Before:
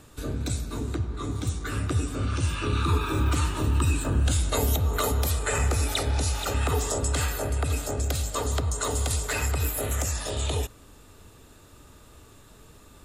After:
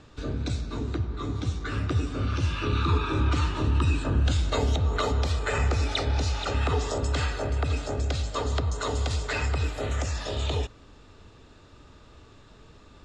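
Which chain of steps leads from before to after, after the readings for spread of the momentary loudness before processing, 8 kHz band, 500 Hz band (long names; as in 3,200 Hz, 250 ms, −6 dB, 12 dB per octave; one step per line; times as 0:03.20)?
6 LU, −10.5 dB, 0.0 dB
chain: low-pass filter 5,600 Hz 24 dB per octave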